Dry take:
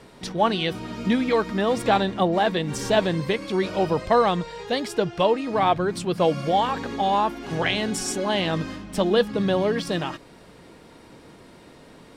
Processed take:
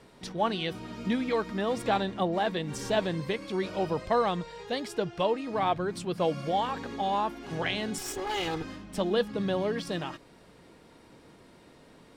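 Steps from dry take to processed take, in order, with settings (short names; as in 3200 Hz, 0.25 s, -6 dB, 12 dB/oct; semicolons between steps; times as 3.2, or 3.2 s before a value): 7.98–8.64 minimum comb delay 2.4 ms; gain -7 dB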